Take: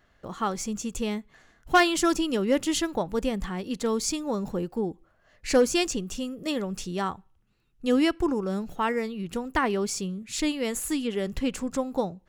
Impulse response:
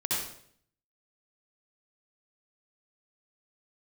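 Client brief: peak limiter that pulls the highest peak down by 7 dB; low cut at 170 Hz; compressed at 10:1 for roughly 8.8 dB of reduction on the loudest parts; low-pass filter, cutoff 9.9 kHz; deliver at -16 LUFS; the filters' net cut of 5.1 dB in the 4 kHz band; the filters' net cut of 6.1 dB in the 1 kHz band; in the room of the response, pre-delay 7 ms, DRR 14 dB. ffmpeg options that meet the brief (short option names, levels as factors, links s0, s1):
-filter_complex "[0:a]highpass=170,lowpass=9900,equalizer=f=1000:t=o:g=-8.5,equalizer=f=4000:t=o:g=-6.5,acompressor=threshold=0.0447:ratio=10,alimiter=level_in=1.19:limit=0.0631:level=0:latency=1,volume=0.841,asplit=2[s0][s1];[1:a]atrim=start_sample=2205,adelay=7[s2];[s1][s2]afir=irnorm=-1:irlink=0,volume=0.0841[s3];[s0][s3]amix=inputs=2:normalize=0,volume=8.41"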